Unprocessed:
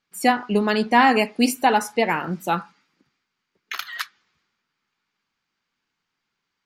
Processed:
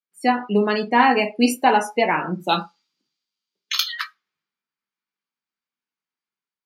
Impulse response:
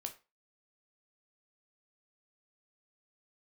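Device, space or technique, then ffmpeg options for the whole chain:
far laptop microphone: -filter_complex "[0:a]asettb=1/sr,asplit=3[link_01][link_02][link_03];[link_01]atrim=end=2.494[link_04];[link_02]atrim=start=2.49:end=3.92,asetpts=PTS-STARTPTS,afade=type=in:duration=0.004:curve=qsin,afade=type=out:start_time=1.426:duration=0.004:curve=qsin,highshelf=frequency=2700:width_type=q:width=1.5:gain=10[link_05];[link_03]atrim=start=3.916[link_06];[link_04][link_05]acrossfade=duration=0.004:curve1=hsin:curve2=qsin[link_07];[link_07][link_06]acrossfade=duration=0.004:curve1=qsin:curve2=hsin[link_08];[1:a]atrim=start_sample=2205[link_09];[link_08][link_09]afir=irnorm=-1:irlink=0,highpass=160,dynaudnorm=framelen=150:gausssize=5:maxgain=6dB,afftdn=noise_reduction=18:noise_floor=-30"

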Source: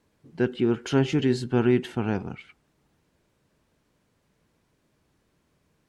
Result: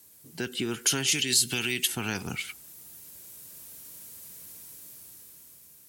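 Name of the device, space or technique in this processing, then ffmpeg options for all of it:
FM broadcast chain: -filter_complex "[0:a]asplit=3[link_01][link_02][link_03];[link_01]afade=type=out:start_time=1.11:duration=0.02[link_04];[link_02]highshelf=frequency=1800:width_type=q:width=1.5:gain=9,afade=type=in:start_time=1.11:duration=0.02,afade=type=out:start_time=1.86:duration=0.02[link_05];[link_03]afade=type=in:start_time=1.86:duration=0.02[link_06];[link_04][link_05][link_06]amix=inputs=3:normalize=0,highpass=frequency=49:width=0.5412,highpass=frequency=49:width=1.3066,dynaudnorm=framelen=280:gausssize=9:maxgain=9.5dB,acrossover=split=420|1200[link_07][link_08][link_09];[link_07]acompressor=threshold=-28dB:ratio=4[link_10];[link_08]acompressor=threshold=-40dB:ratio=4[link_11];[link_09]acompressor=threshold=-27dB:ratio=4[link_12];[link_10][link_11][link_12]amix=inputs=3:normalize=0,aemphasis=mode=production:type=75fm,alimiter=limit=-20dB:level=0:latency=1:release=195,asoftclip=type=hard:threshold=-21dB,lowpass=frequency=15000:width=0.5412,lowpass=frequency=15000:width=1.3066,aemphasis=mode=production:type=75fm"

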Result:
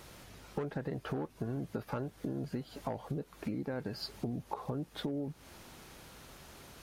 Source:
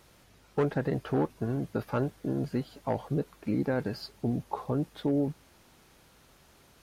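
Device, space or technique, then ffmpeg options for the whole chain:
serial compression, peaks first: -af "acompressor=threshold=-38dB:ratio=5,acompressor=threshold=-46dB:ratio=1.5,volume=6.5dB"

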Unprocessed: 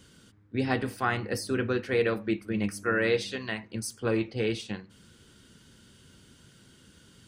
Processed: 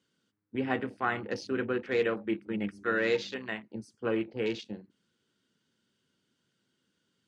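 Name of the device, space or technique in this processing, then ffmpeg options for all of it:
over-cleaned archive recording: -af "highpass=180,lowpass=6600,afwtdn=0.00891,volume=-2dB"

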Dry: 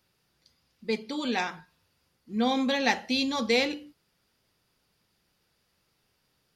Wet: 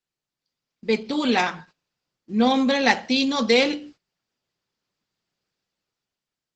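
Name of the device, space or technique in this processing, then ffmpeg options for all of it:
video call: -af "highpass=frequency=110:width=0.5412,highpass=frequency=110:width=1.3066,dynaudnorm=framelen=110:gausssize=13:maxgain=9.5dB,agate=range=-18dB:threshold=-46dB:ratio=16:detection=peak" -ar 48000 -c:a libopus -b:a 12k

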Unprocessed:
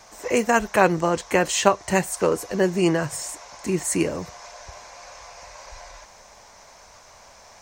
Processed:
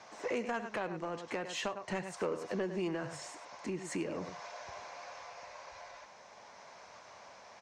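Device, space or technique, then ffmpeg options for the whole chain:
AM radio: -af "highpass=150,lowpass=4100,aecho=1:1:100:0.237,acompressor=threshold=-28dB:ratio=4,asoftclip=type=tanh:threshold=-22dB,tremolo=f=0.43:d=0.3,volume=-3.5dB"

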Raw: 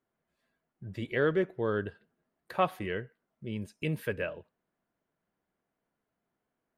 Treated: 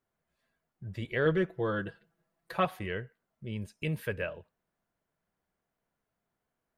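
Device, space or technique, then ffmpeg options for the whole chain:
low shelf boost with a cut just above: -filter_complex "[0:a]asettb=1/sr,asplit=3[link_01][link_02][link_03];[link_01]atrim=end=1.254[link_04];[link_02]atrim=start=1.25:end=2.65,asetpts=PTS-STARTPTS,afade=type=in:duration=0.004:curve=qsin,afade=type=out:start_time=1.396:duration=0.004:curve=qsin,aecho=1:1:6:0.81,atrim=end_sample=61740[link_05];[link_03]atrim=start=2.646[link_06];[link_04][link_05]acrossfade=duration=0.004:curve1=hsin:curve2=qsin[link_07];[link_07][link_06]acrossfade=duration=0.004:curve1=qsin:curve2=hsin,lowshelf=frequency=80:gain=7,equalizer=frequency=290:width_type=o:width=1.1:gain=-5"

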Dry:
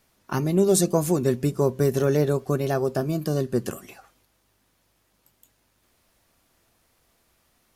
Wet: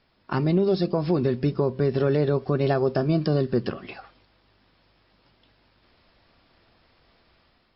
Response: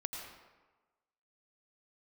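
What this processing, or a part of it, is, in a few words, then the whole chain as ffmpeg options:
low-bitrate web radio: -af "dynaudnorm=framelen=370:gausssize=3:maxgain=5.5dB,alimiter=limit=-14dB:level=0:latency=1:release=207,volume=1.5dB" -ar 12000 -c:a libmp3lame -b:a 40k

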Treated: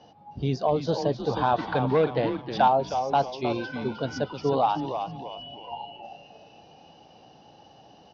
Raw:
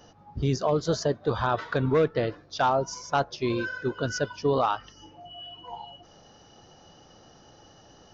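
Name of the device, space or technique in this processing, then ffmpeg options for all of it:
frequency-shifting delay pedal into a guitar cabinet: -filter_complex "[0:a]asplit=6[link_01][link_02][link_03][link_04][link_05][link_06];[link_02]adelay=312,afreqshift=-130,volume=-7dB[link_07];[link_03]adelay=624,afreqshift=-260,volume=-15dB[link_08];[link_04]adelay=936,afreqshift=-390,volume=-22.9dB[link_09];[link_05]adelay=1248,afreqshift=-520,volume=-30.9dB[link_10];[link_06]adelay=1560,afreqshift=-650,volume=-38.8dB[link_11];[link_01][link_07][link_08][link_09][link_10][link_11]amix=inputs=6:normalize=0,highpass=95,equalizer=frequency=98:width_type=q:width=4:gain=-4,equalizer=frequency=370:width_type=q:width=4:gain=-3,equalizer=frequency=790:width_type=q:width=4:gain=7,equalizer=frequency=1300:width_type=q:width=4:gain=-10,equalizer=frequency=1800:width_type=q:width=4:gain=-6,lowpass=frequency=4600:width=0.5412,lowpass=frequency=4600:width=1.3066,asettb=1/sr,asplit=3[link_12][link_13][link_14];[link_12]atrim=end=1.374[link_15];[link_13]atrim=start=1.37:end=2.68,asetpts=PTS-STARTPTS,afade=type=in:duration=0.004:curve=qsin,afade=type=out:start_time=1.306:duration=0.004:curve=qsin,equalizer=frequency=1500:width_type=o:width=1.5:gain=4.5[link_16];[link_14]atrim=start=2.676[link_17];[link_15][link_16]acrossfade=duration=0.004:curve1=hsin:curve2=qsin[link_18];[link_18][link_17]acrossfade=duration=0.004:curve1=qsin:curve2=hsin"

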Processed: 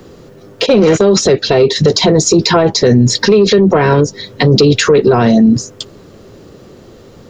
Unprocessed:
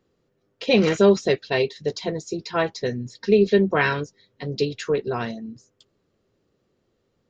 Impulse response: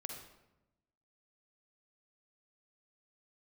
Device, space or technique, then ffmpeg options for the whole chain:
mastering chain: -filter_complex "[0:a]asplit=3[link_01][link_02][link_03];[link_01]afade=type=out:start_time=0.65:duration=0.02[link_04];[link_02]agate=range=-19dB:threshold=-23dB:ratio=16:detection=peak,afade=type=in:start_time=0.65:duration=0.02,afade=type=out:start_time=1.1:duration=0.02[link_05];[link_03]afade=type=in:start_time=1.1:duration=0.02[link_06];[link_04][link_05][link_06]amix=inputs=3:normalize=0,equalizer=frequency=2300:width_type=o:width=1.5:gain=-3.5,acrossover=split=320|900[link_07][link_08][link_09];[link_07]acompressor=threshold=-29dB:ratio=4[link_10];[link_08]acompressor=threshold=-24dB:ratio=4[link_11];[link_09]acompressor=threshold=-39dB:ratio=4[link_12];[link_10][link_11][link_12]amix=inputs=3:normalize=0,acompressor=threshold=-30dB:ratio=2,asoftclip=type=tanh:threshold=-21dB,alimiter=level_in=33.5dB:limit=-1dB:release=50:level=0:latency=1,volume=-1dB"

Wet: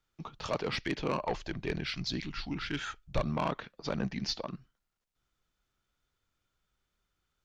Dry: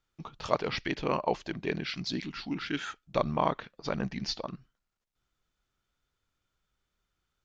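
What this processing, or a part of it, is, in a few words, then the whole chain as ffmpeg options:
one-band saturation: -filter_complex "[0:a]acrossover=split=250|4600[link_01][link_02][link_03];[link_02]asoftclip=type=tanh:threshold=-25dB[link_04];[link_01][link_04][link_03]amix=inputs=3:normalize=0,asplit=3[link_05][link_06][link_07];[link_05]afade=type=out:start_time=1.19:duration=0.02[link_08];[link_06]asubboost=boost=8:cutoff=92,afade=type=in:start_time=1.19:duration=0.02,afade=type=out:start_time=3.21:duration=0.02[link_09];[link_07]afade=type=in:start_time=3.21:duration=0.02[link_10];[link_08][link_09][link_10]amix=inputs=3:normalize=0"

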